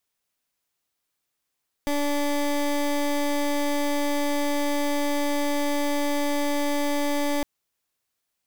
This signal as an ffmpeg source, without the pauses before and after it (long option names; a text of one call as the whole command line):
ffmpeg -f lavfi -i "aevalsrc='0.0631*(2*lt(mod(289*t,1),0.21)-1)':duration=5.56:sample_rate=44100" out.wav